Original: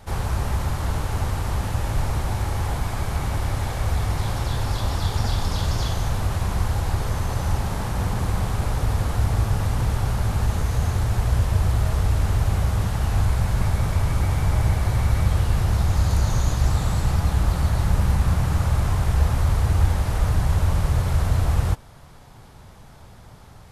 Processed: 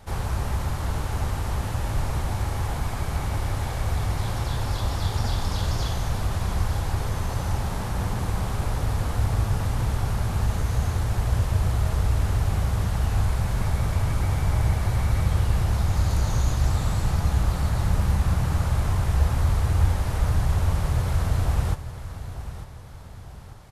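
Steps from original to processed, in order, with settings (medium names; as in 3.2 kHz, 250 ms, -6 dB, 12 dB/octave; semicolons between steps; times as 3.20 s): feedback delay 896 ms, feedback 42%, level -12.5 dB; trim -2.5 dB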